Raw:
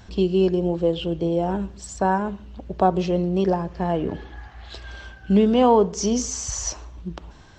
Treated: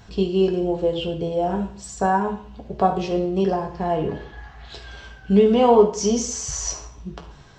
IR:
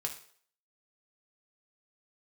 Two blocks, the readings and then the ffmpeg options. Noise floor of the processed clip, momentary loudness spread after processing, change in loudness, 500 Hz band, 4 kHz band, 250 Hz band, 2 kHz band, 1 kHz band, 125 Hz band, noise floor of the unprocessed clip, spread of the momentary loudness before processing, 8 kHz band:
-45 dBFS, 22 LU, +1.0 dB, +2.0 dB, +1.0 dB, -0.5 dB, +1.0 dB, +1.0 dB, -1.5 dB, -46 dBFS, 21 LU, +1.0 dB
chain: -filter_complex "[1:a]atrim=start_sample=2205[a];[0:a][a]afir=irnorm=-1:irlink=0"

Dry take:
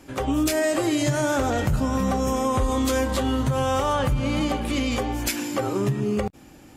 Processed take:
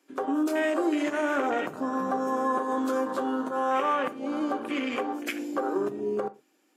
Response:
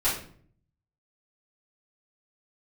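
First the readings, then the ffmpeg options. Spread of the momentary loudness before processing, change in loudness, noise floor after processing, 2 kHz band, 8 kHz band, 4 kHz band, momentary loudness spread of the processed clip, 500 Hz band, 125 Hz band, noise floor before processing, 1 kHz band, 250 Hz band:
4 LU, -4.5 dB, -68 dBFS, -2.5 dB, -16.0 dB, -10.5 dB, 5 LU, -3.5 dB, -26.5 dB, -48 dBFS, -1.0 dB, -4.5 dB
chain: -filter_complex "[0:a]highpass=f=300:w=0.5412,highpass=f=300:w=1.3066,bandreject=f=850:w=12,afwtdn=0.0316,equalizer=f=610:w=1.5:g=-4,asplit=2[a][b];[1:a]atrim=start_sample=2205,afade=t=out:st=0.18:d=0.01,atrim=end_sample=8379[c];[b][c]afir=irnorm=-1:irlink=0,volume=-23.5dB[d];[a][d]amix=inputs=2:normalize=0"

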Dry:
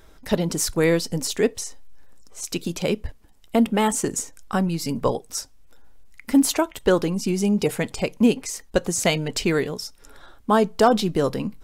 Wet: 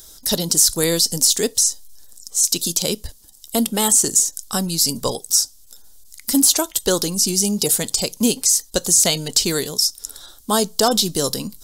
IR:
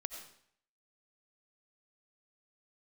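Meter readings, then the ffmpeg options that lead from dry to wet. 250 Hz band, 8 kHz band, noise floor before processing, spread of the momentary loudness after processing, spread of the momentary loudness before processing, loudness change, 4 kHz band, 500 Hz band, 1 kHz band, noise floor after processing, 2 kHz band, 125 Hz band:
-1.5 dB, +14.0 dB, -50 dBFS, 10 LU, 11 LU, +5.5 dB, +11.5 dB, -1.5 dB, -1.5 dB, -47 dBFS, -2.0 dB, -1.5 dB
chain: -filter_complex "[0:a]acrossover=split=3200[a][b];[b]acompressor=threshold=-33dB:ratio=4:attack=1:release=60[c];[a][c]amix=inputs=2:normalize=0,aexciter=amount=13.2:drive=3.8:freq=3.6k,volume=-1.5dB"

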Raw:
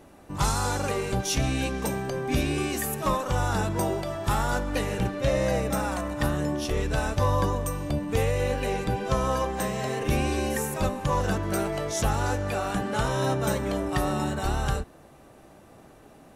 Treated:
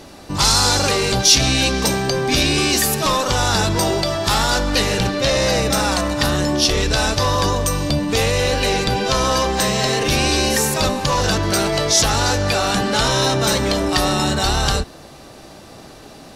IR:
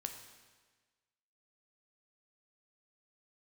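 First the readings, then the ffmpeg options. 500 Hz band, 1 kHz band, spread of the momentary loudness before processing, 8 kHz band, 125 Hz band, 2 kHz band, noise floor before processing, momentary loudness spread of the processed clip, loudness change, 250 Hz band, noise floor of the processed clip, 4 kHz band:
+8.0 dB, +8.5 dB, 3 LU, +15.5 dB, +6.0 dB, +11.5 dB, -52 dBFS, 4 LU, +10.5 dB, +7.5 dB, -41 dBFS, +19.5 dB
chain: -af "apsyclip=24.5dB,equalizer=f=4.6k:w=1.2:g=14,volume=-14dB"

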